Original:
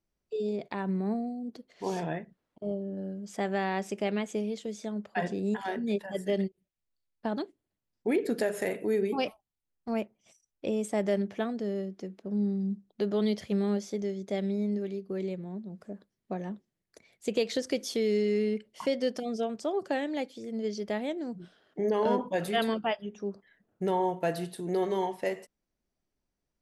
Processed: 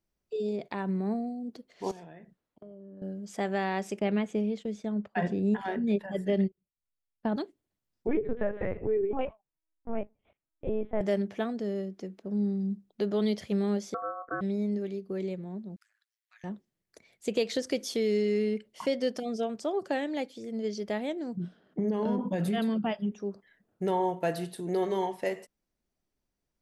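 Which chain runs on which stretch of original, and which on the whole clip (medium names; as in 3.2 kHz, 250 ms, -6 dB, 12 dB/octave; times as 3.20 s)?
1.91–3.02 s: compression 16:1, threshold -43 dBFS + three bands expanded up and down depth 40%
3.99–7.36 s: gate -50 dBFS, range -11 dB + tone controls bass +6 dB, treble -10 dB
8.07–11.01 s: low-pass 1.7 kHz + LPC vocoder at 8 kHz pitch kept
13.94–14.41 s: steep low-pass 1 kHz + ring modulator 920 Hz
15.76–16.44 s: steep high-pass 1.5 kHz + AM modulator 110 Hz, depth 65%
21.37–23.12 s: peaking EQ 190 Hz +14 dB 1.2 oct + compression 4:1, threshold -26 dBFS + tape noise reduction on one side only decoder only
whole clip: none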